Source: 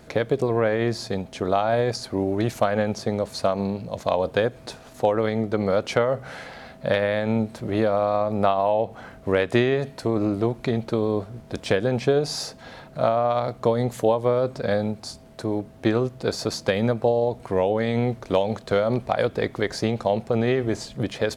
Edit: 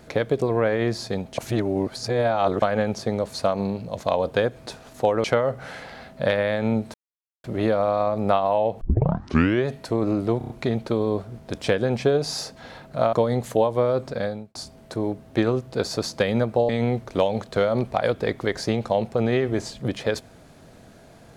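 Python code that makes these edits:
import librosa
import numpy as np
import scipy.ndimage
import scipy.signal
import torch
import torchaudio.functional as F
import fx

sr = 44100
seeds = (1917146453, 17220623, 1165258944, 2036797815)

y = fx.edit(x, sr, fx.reverse_span(start_s=1.38, length_s=1.24),
    fx.cut(start_s=5.24, length_s=0.64),
    fx.insert_silence(at_s=7.58, length_s=0.5),
    fx.tape_start(start_s=8.95, length_s=0.85),
    fx.stutter(start_s=10.52, slice_s=0.03, count=5),
    fx.cut(start_s=13.15, length_s=0.46),
    fx.fade_out_span(start_s=14.55, length_s=0.48),
    fx.cut(start_s=17.17, length_s=0.67), tone=tone)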